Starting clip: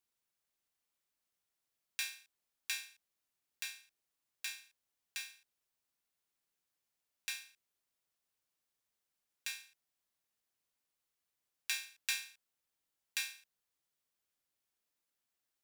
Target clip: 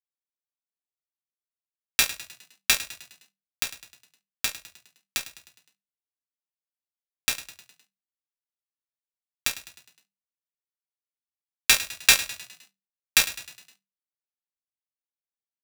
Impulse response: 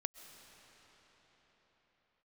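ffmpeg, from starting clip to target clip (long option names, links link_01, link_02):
-filter_complex "[0:a]apsyclip=21.5dB,aeval=exprs='1.06*(cos(1*acos(clip(val(0)/1.06,-1,1)))-cos(1*PI/2))+0.0237*(cos(4*acos(clip(val(0)/1.06,-1,1)))-cos(4*PI/2))+0.15*(cos(7*acos(clip(val(0)/1.06,-1,1)))-cos(7*PI/2))':channel_layout=same,asplit=6[link_01][link_02][link_03][link_04][link_05][link_06];[link_02]adelay=103,afreqshift=39,volume=-15.5dB[link_07];[link_03]adelay=206,afreqshift=78,volume=-21.3dB[link_08];[link_04]adelay=309,afreqshift=117,volume=-27.2dB[link_09];[link_05]adelay=412,afreqshift=156,volume=-33dB[link_10];[link_06]adelay=515,afreqshift=195,volume=-38.9dB[link_11];[link_01][link_07][link_08][link_09][link_10][link_11]amix=inputs=6:normalize=0,volume=-1dB"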